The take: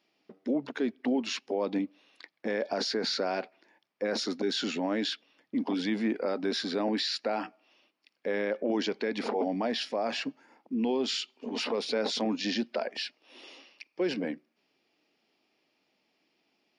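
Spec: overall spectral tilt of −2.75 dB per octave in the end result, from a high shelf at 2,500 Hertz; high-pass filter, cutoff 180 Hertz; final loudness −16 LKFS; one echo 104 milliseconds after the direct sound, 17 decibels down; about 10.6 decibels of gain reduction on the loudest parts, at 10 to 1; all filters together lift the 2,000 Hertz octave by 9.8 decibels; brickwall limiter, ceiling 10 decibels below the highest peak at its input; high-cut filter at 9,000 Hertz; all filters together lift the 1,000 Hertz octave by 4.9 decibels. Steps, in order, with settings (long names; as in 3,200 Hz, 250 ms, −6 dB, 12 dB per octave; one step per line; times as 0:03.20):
high-pass filter 180 Hz
low-pass filter 9,000 Hz
parametric band 1,000 Hz +4 dB
parametric band 2,000 Hz +7 dB
high-shelf EQ 2,500 Hz +9 dB
downward compressor 10 to 1, threshold −32 dBFS
brickwall limiter −28.5 dBFS
single-tap delay 104 ms −17 dB
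level +22.5 dB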